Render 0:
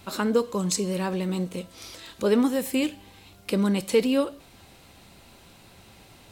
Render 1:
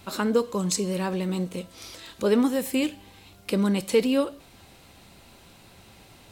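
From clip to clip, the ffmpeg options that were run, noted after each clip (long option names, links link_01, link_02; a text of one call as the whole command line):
ffmpeg -i in.wav -af anull out.wav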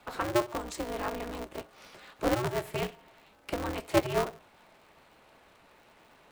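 ffmpeg -i in.wav -filter_complex "[0:a]acrossover=split=360 2400:gain=0.141 1 0.178[link_01][link_02][link_03];[link_01][link_02][link_03]amix=inputs=3:normalize=0,flanger=delay=1.3:depth=6.5:regen=71:speed=1.7:shape=sinusoidal,aeval=exprs='val(0)*sgn(sin(2*PI*120*n/s))':channel_layout=same,volume=2.5dB" out.wav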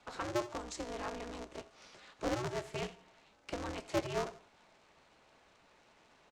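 ffmpeg -i in.wav -af "lowpass=frequency=6600:width_type=q:width=1.8,asoftclip=type=tanh:threshold=-18dB,aecho=1:1:82|164|246:0.112|0.037|0.0122,volume=-6.5dB" out.wav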